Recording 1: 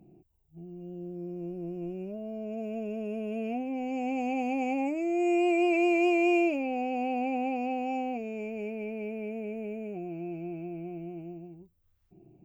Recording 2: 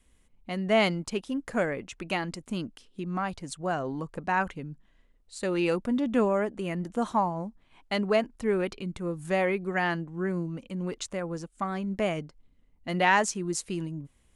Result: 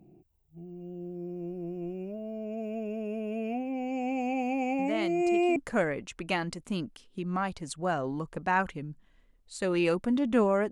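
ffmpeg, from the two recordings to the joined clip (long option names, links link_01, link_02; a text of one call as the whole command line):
ffmpeg -i cue0.wav -i cue1.wav -filter_complex "[1:a]asplit=2[link_01][link_02];[0:a]apad=whole_dur=10.71,atrim=end=10.71,atrim=end=5.562[link_03];[link_02]atrim=start=1.368:end=6.52[link_04];[link_01]atrim=start=0.6:end=1.37,asetpts=PTS-STARTPTS,volume=-10.5dB,afade=type=in:duration=0.004:curve=hsin,afade=type=out:start_time=0.766:duration=0.004:curve=hsin,adelay=4790[link_05];[link_03][link_04]acrossfade=duration=0.004:curve1=hsin:curve2=hsin[link_06];[link_06][link_05]amix=inputs=2:normalize=0" out.wav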